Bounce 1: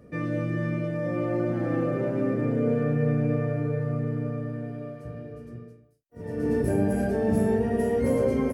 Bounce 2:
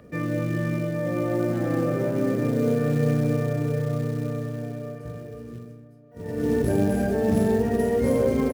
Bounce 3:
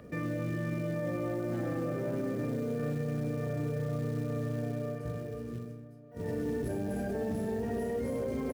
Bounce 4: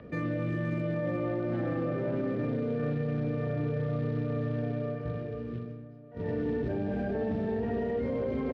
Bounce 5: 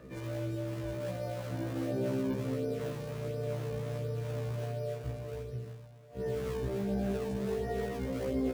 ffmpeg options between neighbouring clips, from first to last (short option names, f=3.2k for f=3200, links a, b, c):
-filter_complex "[0:a]acrossover=split=550|4500[a][b][c];[a]acrusher=bits=6:mode=log:mix=0:aa=0.000001[d];[b]acompressor=mode=upward:threshold=-57dB:ratio=2.5[e];[d][e][c]amix=inputs=3:normalize=0,asplit=2[f][g];[g]adelay=1224,volume=-18dB,highshelf=f=4k:g=-27.6[h];[f][h]amix=inputs=2:normalize=0,volume=2dB"
-af "acompressor=threshold=-27dB:ratio=3,alimiter=level_in=1.5dB:limit=-24dB:level=0:latency=1:release=15,volume=-1.5dB,volume=-1dB"
-filter_complex "[0:a]lowpass=f=3.8k:w=0.5412,lowpass=f=3.8k:w=1.3066,acrossover=split=580|2200[a][b][c];[c]aeval=exprs='clip(val(0),-1,0.002)':c=same[d];[a][b][d]amix=inputs=3:normalize=0,volume=2.5dB"
-filter_complex "[0:a]asplit=2[a][b];[b]acrusher=samples=38:mix=1:aa=0.000001:lfo=1:lforange=60.8:lforate=1.4,volume=-7dB[c];[a][c]amix=inputs=2:normalize=0,afftfilt=real='re*1.73*eq(mod(b,3),0)':imag='im*1.73*eq(mod(b,3),0)':win_size=2048:overlap=0.75,volume=-3dB"